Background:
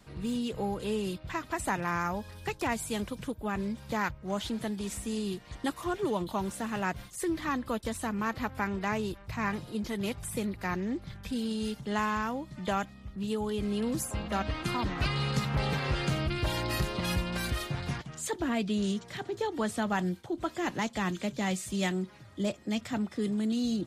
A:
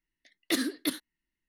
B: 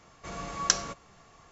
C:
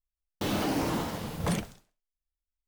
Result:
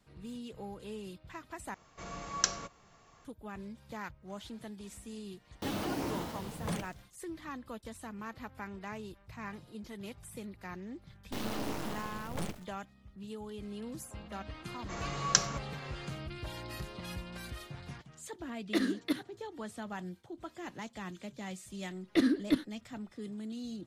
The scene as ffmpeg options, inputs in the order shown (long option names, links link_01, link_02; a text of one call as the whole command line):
ffmpeg -i bed.wav -i cue0.wav -i cue1.wav -i cue2.wav -filter_complex "[2:a]asplit=2[link_01][link_02];[3:a]asplit=2[link_03][link_04];[1:a]asplit=2[link_05][link_06];[0:a]volume=-11.5dB[link_07];[link_04]aeval=exprs='max(val(0),0)':channel_layout=same[link_08];[link_05]lowpass=frequency=1700:poles=1[link_09];[link_06]aemphasis=mode=reproduction:type=riaa[link_10];[link_07]asplit=2[link_11][link_12];[link_11]atrim=end=1.744[link_13];[link_01]atrim=end=1.51,asetpts=PTS-STARTPTS,volume=-5dB[link_14];[link_12]atrim=start=3.246[link_15];[link_03]atrim=end=2.67,asetpts=PTS-STARTPTS,volume=-7dB,afade=type=in:duration=0.004:curve=hsin,afade=type=out:start_time=2.666:duration=0.004:curve=hsin,adelay=229761S[link_16];[link_08]atrim=end=2.67,asetpts=PTS-STARTPTS,volume=-4.5dB,afade=type=in:duration=0.004:curve=hsin,afade=type=out:start_time=2.666:duration=0.004:curve=hsin,adelay=10910[link_17];[link_02]atrim=end=1.51,asetpts=PTS-STARTPTS,volume=-1.5dB,afade=type=in:duration=0.004:curve=hsin,afade=type=out:start_time=1.506:duration=0.004:curve=hsin,adelay=14650[link_18];[link_09]atrim=end=1.48,asetpts=PTS-STARTPTS,volume=-0.5dB,afade=type=in:duration=0.004:curve=hsin,afade=type=out:start_time=1.476:duration=0.004:curve=hsin,adelay=18230[link_19];[link_10]atrim=end=1.48,asetpts=PTS-STARTPTS,volume=-2dB,afade=type=in:duration=0.004:curve=hsin,afade=type=out:start_time=1.476:duration=0.004:curve=hsin,adelay=21650[link_20];[link_13][link_14]acrossfade=duration=0.004:curve1=hsin:curve2=hsin[link_21];[link_21][link_15]acrossfade=duration=0.004:curve1=hsin:curve2=hsin[link_22];[link_22][link_16][link_17][link_18][link_19][link_20]amix=inputs=6:normalize=0" out.wav